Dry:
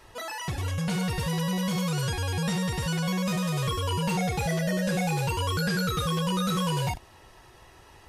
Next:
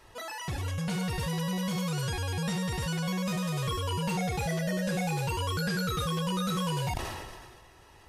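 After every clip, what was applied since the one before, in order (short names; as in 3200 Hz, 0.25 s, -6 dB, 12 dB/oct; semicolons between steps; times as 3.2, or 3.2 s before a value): sustainer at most 34 dB/s; gain -3.5 dB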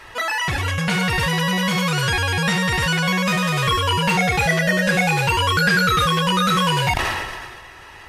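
bell 1900 Hz +11.5 dB 2 oct; gain +8.5 dB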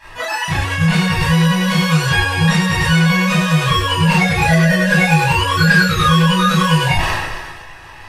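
reverb, pre-delay 20 ms, DRR -8 dB; gain -8 dB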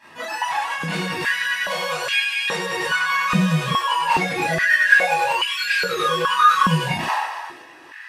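stepped high-pass 2.4 Hz 210–2400 Hz; gain -7.5 dB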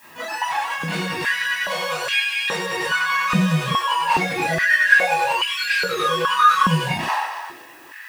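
added noise blue -53 dBFS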